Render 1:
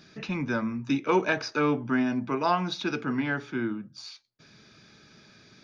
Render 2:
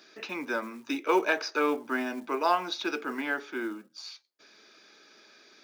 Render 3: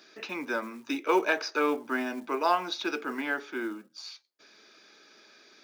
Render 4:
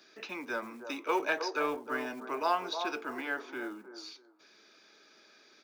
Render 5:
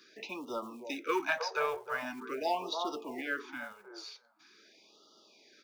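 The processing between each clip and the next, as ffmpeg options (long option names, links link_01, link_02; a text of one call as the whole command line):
ffmpeg -i in.wav -af "acrusher=bits=8:mode=log:mix=0:aa=0.000001,highpass=frequency=320:width=0.5412,highpass=frequency=320:width=1.3066" out.wav
ffmpeg -i in.wav -af anull out.wav
ffmpeg -i in.wav -filter_complex "[0:a]acrossover=split=370|1200[link_01][link_02][link_03];[link_01]asoftclip=type=tanh:threshold=-39.5dB[link_04];[link_02]aecho=1:1:313|626|939:0.562|0.124|0.0272[link_05];[link_04][link_05][link_03]amix=inputs=3:normalize=0,volume=-4dB" out.wav
ffmpeg -i in.wav -af "afftfilt=real='re*(1-between(b*sr/1024,240*pow(2000/240,0.5+0.5*sin(2*PI*0.44*pts/sr))/1.41,240*pow(2000/240,0.5+0.5*sin(2*PI*0.44*pts/sr))*1.41))':imag='im*(1-between(b*sr/1024,240*pow(2000/240,0.5+0.5*sin(2*PI*0.44*pts/sr))/1.41,240*pow(2000/240,0.5+0.5*sin(2*PI*0.44*pts/sr))*1.41))':win_size=1024:overlap=0.75" out.wav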